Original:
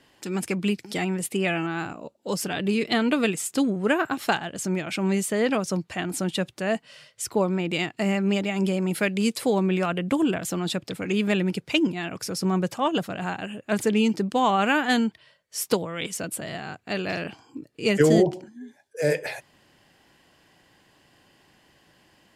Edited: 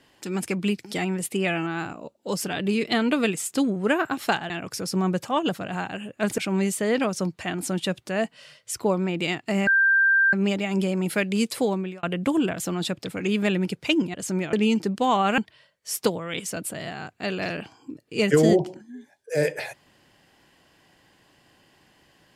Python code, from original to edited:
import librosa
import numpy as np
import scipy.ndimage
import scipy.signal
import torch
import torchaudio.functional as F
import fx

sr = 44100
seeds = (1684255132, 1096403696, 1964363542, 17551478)

y = fx.edit(x, sr, fx.swap(start_s=4.5, length_s=0.39, other_s=11.99, other_length_s=1.88),
    fx.insert_tone(at_s=8.18, length_s=0.66, hz=1580.0, db=-15.5),
    fx.fade_out_span(start_s=9.46, length_s=0.42),
    fx.cut(start_s=14.72, length_s=0.33), tone=tone)